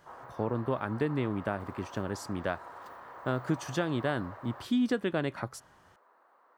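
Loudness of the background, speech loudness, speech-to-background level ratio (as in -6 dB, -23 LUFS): -47.0 LUFS, -33.0 LUFS, 14.0 dB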